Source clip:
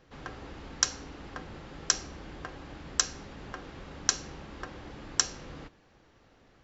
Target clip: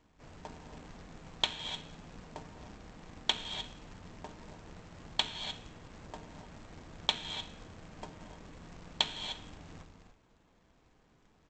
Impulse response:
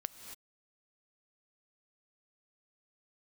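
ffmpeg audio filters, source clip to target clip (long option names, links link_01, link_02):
-filter_complex "[1:a]atrim=start_sample=2205,asetrate=70560,aresample=44100[link_01];[0:a][link_01]afir=irnorm=-1:irlink=0,asetrate=25442,aresample=44100,aresample=16000,acrusher=bits=2:mode=log:mix=0:aa=0.000001,aresample=44100"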